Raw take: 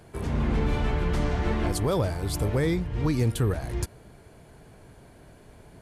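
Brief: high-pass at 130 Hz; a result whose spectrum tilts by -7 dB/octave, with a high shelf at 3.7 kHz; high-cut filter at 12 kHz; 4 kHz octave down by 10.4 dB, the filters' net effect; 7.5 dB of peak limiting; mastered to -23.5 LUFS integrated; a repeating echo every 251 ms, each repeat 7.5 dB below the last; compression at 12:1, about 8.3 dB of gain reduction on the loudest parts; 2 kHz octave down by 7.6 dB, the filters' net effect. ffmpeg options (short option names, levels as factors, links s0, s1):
-af "highpass=130,lowpass=12000,equalizer=f=2000:t=o:g=-6.5,highshelf=f=3700:g=-6.5,equalizer=f=4000:t=o:g=-7,acompressor=threshold=0.0316:ratio=12,alimiter=level_in=1.88:limit=0.0631:level=0:latency=1,volume=0.531,aecho=1:1:251|502|753|1004|1255:0.422|0.177|0.0744|0.0312|0.0131,volume=5.31"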